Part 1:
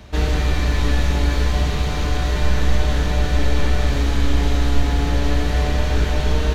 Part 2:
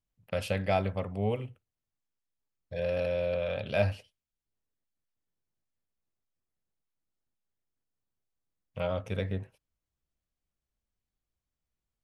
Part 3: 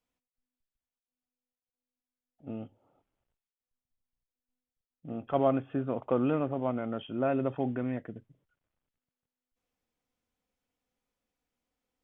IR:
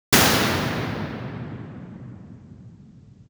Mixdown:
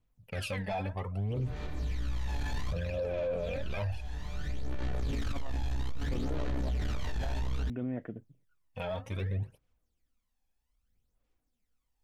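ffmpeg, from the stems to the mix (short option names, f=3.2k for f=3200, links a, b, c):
-filter_complex "[0:a]alimiter=limit=-11.5dB:level=0:latency=1:release=302,flanger=delay=17:depth=5:speed=1.1,adelay=1150,volume=-3.5dB[a];[1:a]aphaser=in_gain=1:out_gain=1:delay=4.8:decay=0.61:speed=0.73:type=triangular,adynamicequalizer=threshold=0.00501:dfrequency=1900:dqfactor=0.7:tfrequency=1900:tqfactor=0.7:attack=5:release=100:ratio=0.375:range=2.5:mode=cutabove:tftype=highshelf,volume=-2dB,asplit=2[b][c];[2:a]volume=-6.5dB[d];[c]apad=whole_len=339489[e];[a][e]sidechaincompress=threshold=-43dB:ratio=16:attack=6.2:release=868[f];[f][b][d]amix=inputs=3:normalize=0,asoftclip=type=tanh:threshold=-22.5dB,aphaser=in_gain=1:out_gain=1:delay=1.2:decay=0.58:speed=0.62:type=sinusoidal,alimiter=level_in=3dB:limit=-24dB:level=0:latency=1:release=12,volume=-3dB"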